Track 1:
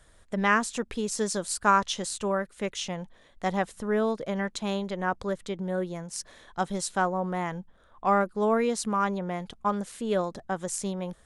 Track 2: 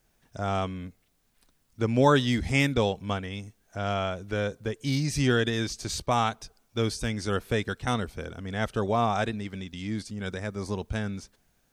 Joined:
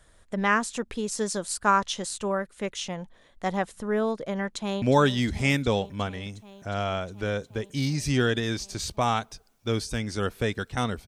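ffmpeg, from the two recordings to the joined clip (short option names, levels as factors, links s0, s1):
-filter_complex "[0:a]apad=whole_dur=11.07,atrim=end=11.07,atrim=end=4.822[s0];[1:a]atrim=start=1.918:end=8.17[s1];[s0][s1]acrossfade=d=0.004:c1=hsin:c2=hsin,asplit=2[s2][s3];[s3]afade=t=in:st=4.46:d=0.01,afade=t=out:st=4.82:d=0.01,aecho=0:1:360|720|1080|1440|1800|2160|2520|2880|3240|3600|3960|4320:0.223872|0.190291|0.161748|0.137485|0.116863|0.0993332|0.0844333|0.0717683|0.061003|0.0518526|0.0440747|0.0374635[s4];[s2][s4]amix=inputs=2:normalize=0"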